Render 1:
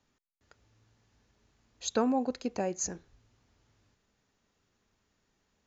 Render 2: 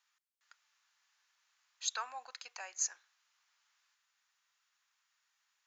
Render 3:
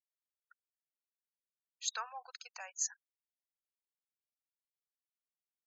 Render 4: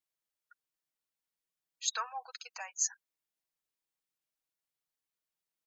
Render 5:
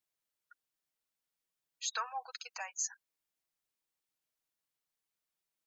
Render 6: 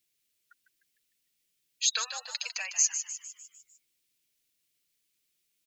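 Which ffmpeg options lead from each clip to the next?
ffmpeg -i in.wav -af "highpass=frequency=1100:width=0.5412,highpass=frequency=1100:width=1.3066" out.wav
ffmpeg -i in.wav -af "afftfilt=real='re*gte(hypot(re,im),0.00398)':imag='im*gte(hypot(re,im),0.00398)':win_size=1024:overlap=0.75,volume=-1dB" out.wav
ffmpeg -i in.wav -af "aecho=1:1:6.3:0.56,volume=2.5dB" out.wav
ffmpeg -i in.wav -af "alimiter=level_in=2.5dB:limit=-24dB:level=0:latency=1:release=88,volume=-2.5dB,volume=1dB" out.wav
ffmpeg -i in.wav -filter_complex "[0:a]firequalizer=gain_entry='entry(340,0);entry(810,-16);entry(2300,3)':delay=0.05:min_phase=1,asplit=2[link_01][link_02];[link_02]asplit=6[link_03][link_04][link_05][link_06][link_07][link_08];[link_03]adelay=151,afreqshift=96,volume=-9dB[link_09];[link_04]adelay=302,afreqshift=192,volume=-14.7dB[link_10];[link_05]adelay=453,afreqshift=288,volume=-20.4dB[link_11];[link_06]adelay=604,afreqshift=384,volume=-26dB[link_12];[link_07]adelay=755,afreqshift=480,volume=-31.7dB[link_13];[link_08]adelay=906,afreqshift=576,volume=-37.4dB[link_14];[link_09][link_10][link_11][link_12][link_13][link_14]amix=inputs=6:normalize=0[link_15];[link_01][link_15]amix=inputs=2:normalize=0,volume=8.5dB" out.wav

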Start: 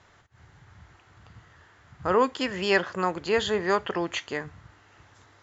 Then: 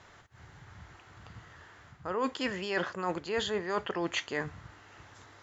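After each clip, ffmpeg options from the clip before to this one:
ffmpeg -i in.wav -af "equalizer=frequency=79:width_type=o:width=1.7:gain=-2.5,areverse,acompressor=threshold=-31dB:ratio=8,areverse,volume=2.5dB" out.wav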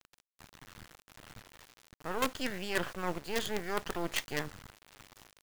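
ffmpeg -i in.wav -af "acrusher=bits=5:dc=4:mix=0:aa=0.000001" out.wav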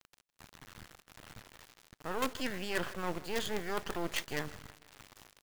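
ffmpeg -i in.wav -af "aecho=1:1:158|316|474:0.0891|0.0392|0.0173,asoftclip=type=tanh:threshold=-20dB" out.wav

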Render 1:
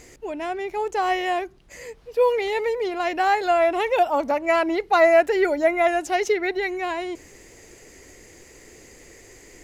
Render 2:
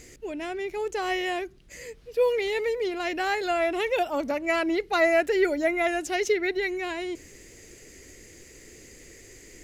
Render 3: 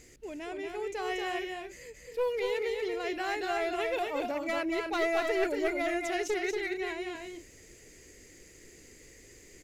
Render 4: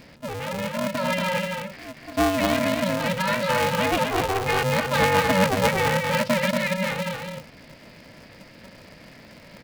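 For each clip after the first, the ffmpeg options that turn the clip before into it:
ffmpeg -i in.wav -af "equalizer=frequency=880:width=1.2:gain=-10.5" out.wav
ffmpeg -i in.wav -filter_complex "[0:a]aeval=exprs='clip(val(0),-1,0.0841)':channel_layout=same,asplit=2[link_01][link_02];[link_02]aecho=0:1:233.2|268.2:0.631|0.282[link_03];[link_01][link_03]amix=inputs=2:normalize=0,volume=-7dB" out.wav
ffmpeg -i in.wav -af "aresample=11025,aresample=44100,aeval=exprs='val(0)*sgn(sin(2*PI*190*n/s))':channel_layout=same,volume=9dB" out.wav

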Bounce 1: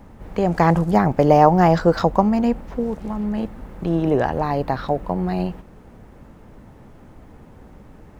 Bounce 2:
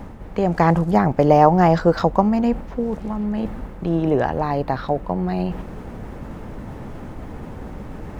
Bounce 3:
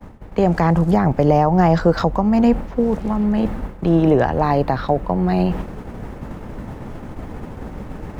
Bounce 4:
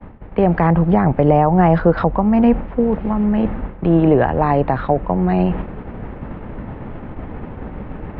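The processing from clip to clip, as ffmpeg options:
ffmpeg -i in.wav -af "highshelf=frequency=6100:gain=-4.5,areverse,acompressor=mode=upward:threshold=-21dB:ratio=2.5,areverse" out.wav
ffmpeg -i in.wav -filter_complex "[0:a]agate=range=-33dB:threshold=-28dB:ratio=3:detection=peak,acrossover=split=140[link_01][link_02];[link_02]alimiter=limit=-11dB:level=0:latency=1:release=235[link_03];[link_01][link_03]amix=inputs=2:normalize=0,volume=5.5dB" out.wav
ffmpeg -i in.wav -af "lowpass=frequency=2900:width=0.5412,lowpass=frequency=2900:width=1.3066,volume=1.5dB" out.wav

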